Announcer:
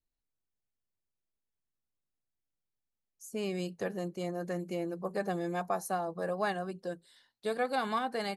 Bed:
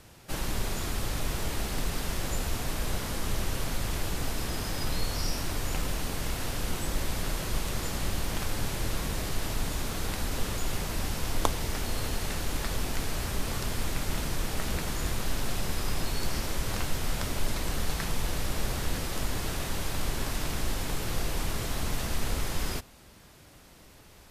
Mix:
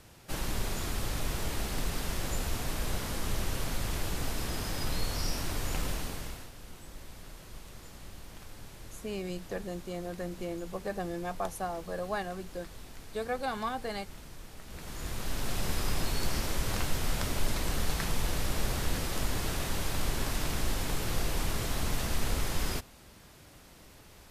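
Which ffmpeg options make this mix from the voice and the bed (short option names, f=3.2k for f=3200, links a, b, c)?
-filter_complex "[0:a]adelay=5700,volume=-2dB[a];[1:a]volume=14dB,afade=t=out:st=5.89:d=0.61:silence=0.188365,afade=t=in:st=14.67:d=1.03:silence=0.158489[b];[a][b]amix=inputs=2:normalize=0"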